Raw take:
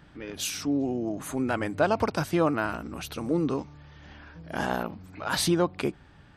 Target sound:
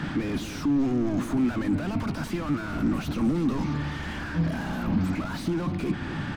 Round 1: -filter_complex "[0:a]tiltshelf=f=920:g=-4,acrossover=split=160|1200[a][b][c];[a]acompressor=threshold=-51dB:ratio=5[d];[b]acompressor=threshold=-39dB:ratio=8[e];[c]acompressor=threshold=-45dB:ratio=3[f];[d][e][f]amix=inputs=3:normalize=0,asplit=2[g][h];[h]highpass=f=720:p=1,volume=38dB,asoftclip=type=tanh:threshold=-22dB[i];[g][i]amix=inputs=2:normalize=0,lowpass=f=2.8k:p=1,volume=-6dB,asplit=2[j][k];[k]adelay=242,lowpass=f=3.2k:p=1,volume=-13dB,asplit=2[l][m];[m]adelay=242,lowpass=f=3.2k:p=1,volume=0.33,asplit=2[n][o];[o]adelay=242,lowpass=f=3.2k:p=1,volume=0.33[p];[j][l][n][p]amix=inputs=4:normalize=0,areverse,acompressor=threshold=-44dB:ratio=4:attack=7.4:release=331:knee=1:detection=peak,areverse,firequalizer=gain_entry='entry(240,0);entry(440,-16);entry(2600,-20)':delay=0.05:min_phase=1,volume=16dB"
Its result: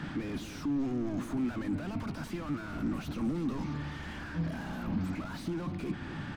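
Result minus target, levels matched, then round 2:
compressor: peak gain reduction +8 dB
-filter_complex "[0:a]tiltshelf=f=920:g=-4,acrossover=split=160|1200[a][b][c];[a]acompressor=threshold=-51dB:ratio=5[d];[b]acompressor=threshold=-39dB:ratio=8[e];[c]acompressor=threshold=-45dB:ratio=3[f];[d][e][f]amix=inputs=3:normalize=0,asplit=2[g][h];[h]highpass=f=720:p=1,volume=38dB,asoftclip=type=tanh:threshold=-22dB[i];[g][i]amix=inputs=2:normalize=0,lowpass=f=2.8k:p=1,volume=-6dB,asplit=2[j][k];[k]adelay=242,lowpass=f=3.2k:p=1,volume=-13dB,asplit=2[l][m];[m]adelay=242,lowpass=f=3.2k:p=1,volume=0.33,asplit=2[n][o];[o]adelay=242,lowpass=f=3.2k:p=1,volume=0.33[p];[j][l][n][p]amix=inputs=4:normalize=0,areverse,acompressor=threshold=-33.5dB:ratio=4:attack=7.4:release=331:knee=1:detection=peak,areverse,firequalizer=gain_entry='entry(240,0);entry(440,-16);entry(2600,-20)':delay=0.05:min_phase=1,volume=16dB"

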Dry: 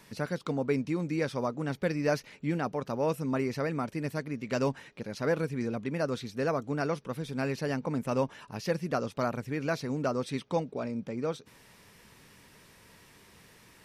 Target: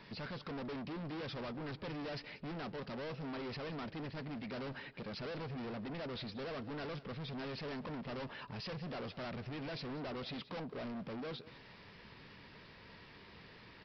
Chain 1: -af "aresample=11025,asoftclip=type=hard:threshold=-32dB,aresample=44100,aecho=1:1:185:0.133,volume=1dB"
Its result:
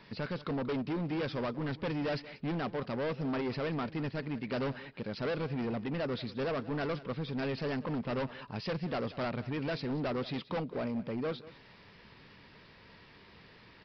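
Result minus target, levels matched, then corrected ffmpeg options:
hard clip: distortion -5 dB
-af "aresample=11025,asoftclip=type=hard:threshold=-42.5dB,aresample=44100,aecho=1:1:185:0.133,volume=1dB"

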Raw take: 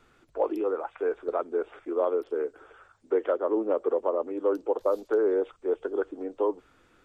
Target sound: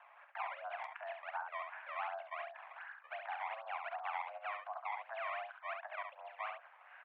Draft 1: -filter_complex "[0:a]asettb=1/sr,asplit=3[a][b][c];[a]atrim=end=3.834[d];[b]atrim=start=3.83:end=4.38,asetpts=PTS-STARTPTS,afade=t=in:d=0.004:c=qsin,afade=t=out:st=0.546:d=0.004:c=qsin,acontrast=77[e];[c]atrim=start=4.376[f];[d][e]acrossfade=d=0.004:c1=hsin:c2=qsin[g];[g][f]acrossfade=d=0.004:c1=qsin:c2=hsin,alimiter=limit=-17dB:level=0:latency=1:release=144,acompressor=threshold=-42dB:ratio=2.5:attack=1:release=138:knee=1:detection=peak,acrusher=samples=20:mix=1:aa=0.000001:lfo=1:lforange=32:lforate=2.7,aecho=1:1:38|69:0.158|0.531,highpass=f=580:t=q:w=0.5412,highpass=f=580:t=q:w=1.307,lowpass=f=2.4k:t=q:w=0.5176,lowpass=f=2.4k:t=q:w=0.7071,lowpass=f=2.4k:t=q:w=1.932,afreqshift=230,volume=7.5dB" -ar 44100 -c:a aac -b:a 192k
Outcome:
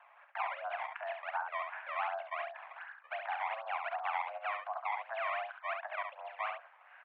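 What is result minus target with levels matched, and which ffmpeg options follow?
compressor: peak gain reduction -5 dB
-filter_complex "[0:a]asettb=1/sr,asplit=3[a][b][c];[a]atrim=end=3.834[d];[b]atrim=start=3.83:end=4.38,asetpts=PTS-STARTPTS,afade=t=in:d=0.004:c=qsin,afade=t=out:st=0.546:d=0.004:c=qsin,acontrast=77[e];[c]atrim=start=4.376[f];[d][e]acrossfade=d=0.004:c1=hsin:c2=qsin[g];[g][f]acrossfade=d=0.004:c1=qsin:c2=hsin,alimiter=limit=-17dB:level=0:latency=1:release=144,acompressor=threshold=-50.5dB:ratio=2.5:attack=1:release=138:knee=1:detection=peak,acrusher=samples=20:mix=1:aa=0.000001:lfo=1:lforange=32:lforate=2.7,aecho=1:1:38|69:0.158|0.531,highpass=f=580:t=q:w=0.5412,highpass=f=580:t=q:w=1.307,lowpass=f=2.4k:t=q:w=0.5176,lowpass=f=2.4k:t=q:w=0.7071,lowpass=f=2.4k:t=q:w=1.932,afreqshift=230,volume=7.5dB" -ar 44100 -c:a aac -b:a 192k

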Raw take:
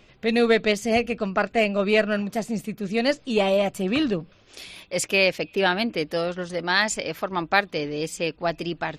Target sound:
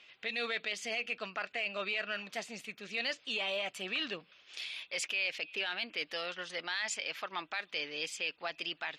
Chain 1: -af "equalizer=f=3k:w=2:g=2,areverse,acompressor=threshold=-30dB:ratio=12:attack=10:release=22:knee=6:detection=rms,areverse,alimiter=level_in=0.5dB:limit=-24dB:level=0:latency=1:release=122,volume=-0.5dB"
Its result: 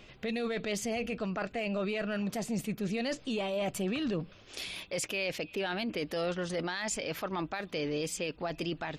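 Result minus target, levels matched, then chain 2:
2000 Hz band -5.0 dB
-af "bandpass=f=2.8k:t=q:w=1:csg=0,equalizer=f=3k:w=2:g=2,areverse,acompressor=threshold=-30dB:ratio=12:attack=10:release=22:knee=6:detection=rms,areverse,alimiter=level_in=0.5dB:limit=-24dB:level=0:latency=1:release=122,volume=-0.5dB"

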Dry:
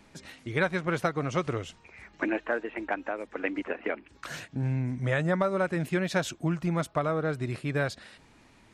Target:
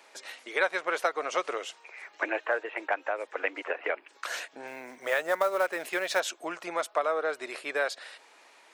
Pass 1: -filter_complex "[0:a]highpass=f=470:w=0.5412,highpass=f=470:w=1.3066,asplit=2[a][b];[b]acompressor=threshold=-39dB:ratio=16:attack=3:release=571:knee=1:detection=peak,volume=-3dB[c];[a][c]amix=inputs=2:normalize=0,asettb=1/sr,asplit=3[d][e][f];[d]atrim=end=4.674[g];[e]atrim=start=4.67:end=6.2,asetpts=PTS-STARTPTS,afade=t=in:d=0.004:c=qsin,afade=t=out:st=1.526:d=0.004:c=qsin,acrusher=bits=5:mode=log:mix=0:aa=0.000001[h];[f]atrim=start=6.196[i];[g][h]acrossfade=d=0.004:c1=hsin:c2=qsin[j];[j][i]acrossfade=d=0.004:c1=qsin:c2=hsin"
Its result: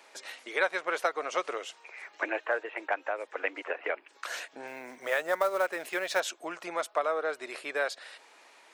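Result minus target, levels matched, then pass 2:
compressor: peak gain reduction +8.5 dB
-filter_complex "[0:a]highpass=f=470:w=0.5412,highpass=f=470:w=1.3066,asplit=2[a][b];[b]acompressor=threshold=-30dB:ratio=16:attack=3:release=571:knee=1:detection=peak,volume=-3dB[c];[a][c]amix=inputs=2:normalize=0,asettb=1/sr,asplit=3[d][e][f];[d]atrim=end=4.674[g];[e]atrim=start=4.67:end=6.2,asetpts=PTS-STARTPTS,afade=t=in:d=0.004:c=qsin,afade=t=out:st=1.526:d=0.004:c=qsin,acrusher=bits=5:mode=log:mix=0:aa=0.000001[h];[f]atrim=start=6.196[i];[g][h]acrossfade=d=0.004:c1=hsin:c2=qsin[j];[j][i]acrossfade=d=0.004:c1=qsin:c2=hsin"

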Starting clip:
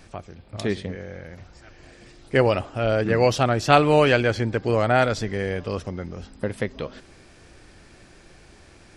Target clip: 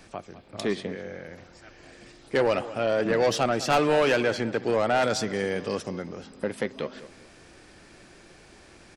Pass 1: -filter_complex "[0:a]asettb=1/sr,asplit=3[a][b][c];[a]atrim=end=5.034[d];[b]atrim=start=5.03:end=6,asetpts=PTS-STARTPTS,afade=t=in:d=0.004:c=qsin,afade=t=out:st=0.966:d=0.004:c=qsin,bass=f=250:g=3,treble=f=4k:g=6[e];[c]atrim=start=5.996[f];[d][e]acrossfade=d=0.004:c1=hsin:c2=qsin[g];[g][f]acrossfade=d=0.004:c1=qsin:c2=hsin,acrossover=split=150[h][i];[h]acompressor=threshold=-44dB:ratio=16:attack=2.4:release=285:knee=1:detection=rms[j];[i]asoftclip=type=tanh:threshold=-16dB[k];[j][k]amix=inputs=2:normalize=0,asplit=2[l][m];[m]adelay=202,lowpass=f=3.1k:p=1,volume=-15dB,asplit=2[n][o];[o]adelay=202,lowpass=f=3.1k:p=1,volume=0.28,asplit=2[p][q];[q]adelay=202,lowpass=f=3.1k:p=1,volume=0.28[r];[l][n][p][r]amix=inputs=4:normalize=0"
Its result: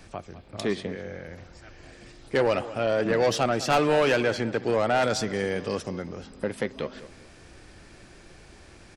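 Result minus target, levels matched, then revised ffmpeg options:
compressor: peak gain reduction -10.5 dB
-filter_complex "[0:a]asettb=1/sr,asplit=3[a][b][c];[a]atrim=end=5.034[d];[b]atrim=start=5.03:end=6,asetpts=PTS-STARTPTS,afade=t=in:d=0.004:c=qsin,afade=t=out:st=0.966:d=0.004:c=qsin,bass=f=250:g=3,treble=f=4k:g=6[e];[c]atrim=start=5.996[f];[d][e]acrossfade=d=0.004:c1=hsin:c2=qsin[g];[g][f]acrossfade=d=0.004:c1=qsin:c2=hsin,acrossover=split=150[h][i];[h]acompressor=threshold=-55dB:ratio=16:attack=2.4:release=285:knee=1:detection=rms[j];[i]asoftclip=type=tanh:threshold=-16dB[k];[j][k]amix=inputs=2:normalize=0,asplit=2[l][m];[m]adelay=202,lowpass=f=3.1k:p=1,volume=-15dB,asplit=2[n][o];[o]adelay=202,lowpass=f=3.1k:p=1,volume=0.28,asplit=2[p][q];[q]adelay=202,lowpass=f=3.1k:p=1,volume=0.28[r];[l][n][p][r]amix=inputs=4:normalize=0"

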